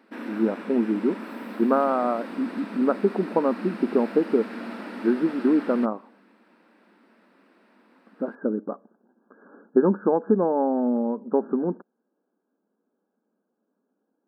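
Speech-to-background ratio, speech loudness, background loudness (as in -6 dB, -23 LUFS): 12.5 dB, -24.5 LUFS, -37.0 LUFS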